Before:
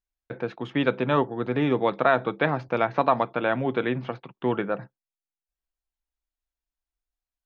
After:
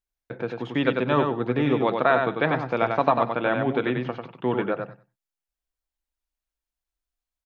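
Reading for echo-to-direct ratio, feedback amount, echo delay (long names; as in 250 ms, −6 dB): −5.0 dB, 17%, 95 ms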